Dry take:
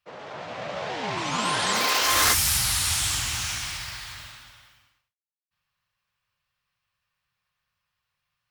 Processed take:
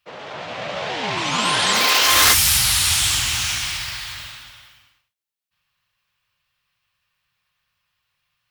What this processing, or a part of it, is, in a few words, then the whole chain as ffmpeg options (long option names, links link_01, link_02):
presence and air boost: -af "equalizer=frequency=3100:width_type=o:width=1.3:gain=5,highshelf=frequency=12000:gain=5,volume=4dB"